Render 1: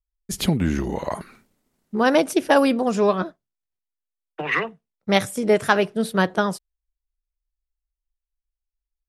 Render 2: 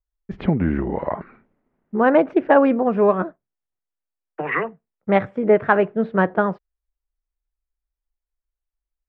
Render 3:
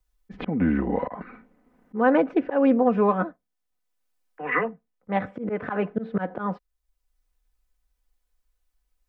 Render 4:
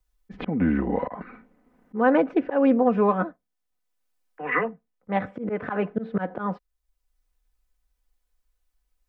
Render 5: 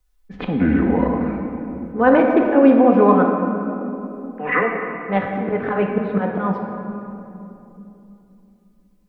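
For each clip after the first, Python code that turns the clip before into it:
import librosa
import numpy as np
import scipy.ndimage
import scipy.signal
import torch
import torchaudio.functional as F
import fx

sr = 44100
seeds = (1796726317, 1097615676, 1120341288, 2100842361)

y1 = scipy.signal.sosfilt(scipy.signal.butter(4, 2100.0, 'lowpass', fs=sr, output='sos'), x)
y1 = fx.peak_eq(y1, sr, hz=520.0, db=3.0, octaves=2.3)
y2 = y1 + 0.59 * np.pad(y1, (int(4.0 * sr / 1000.0), 0))[:len(y1)]
y2 = fx.auto_swell(y2, sr, attack_ms=190.0)
y2 = fx.band_squash(y2, sr, depth_pct=40)
y2 = F.gain(torch.from_numpy(y2), -2.0).numpy()
y3 = y2
y4 = fx.room_shoebox(y3, sr, seeds[0], volume_m3=130.0, walls='hard', distance_m=0.35)
y4 = F.gain(torch.from_numpy(y4), 4.5).numpy()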